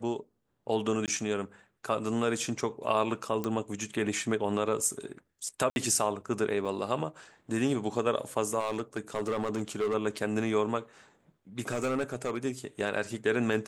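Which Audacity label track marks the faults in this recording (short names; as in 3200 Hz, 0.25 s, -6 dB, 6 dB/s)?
1.060000	1.080000	gap 18 ms
3.440000	3.440000	pop -18 dBFS
5.700000	5.760000	gap 61 ms
6.650000	6.650000	gap 4.9 ms
8.600000	9.950000	clipped -25.5 dBFS
11.710000	12.450000	clipped -25 dBFS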